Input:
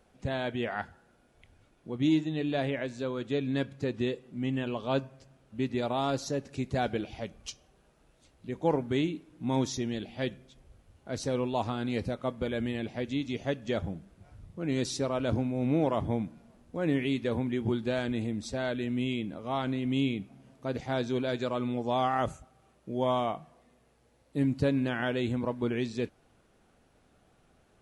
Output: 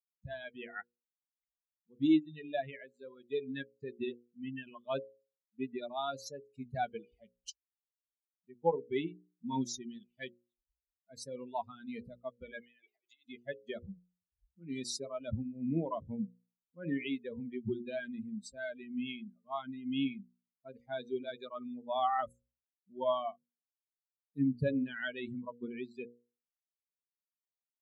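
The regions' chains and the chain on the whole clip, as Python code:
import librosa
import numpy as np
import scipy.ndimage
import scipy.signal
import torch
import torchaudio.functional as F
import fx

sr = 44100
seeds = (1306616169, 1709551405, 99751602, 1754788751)

y = fx.chain(x, sr, fx.highpass(hz=400.0, slope=24),
    fx.over_compress(threshold_db=-44.0, ratio=-1.0), at=(12.6, 13.24))
y = fx.bin_expand(y, sr, power=3.0)
y = scipy.signal.sosfilt(scipy.signal.butter(2, 91.0, 'highpass', fs=sr, output='sos'), y)
y = fx.hum_notches(y, sr, base_hz=60, count=9)
y = y * librosa.db_to_amplitude(2.0)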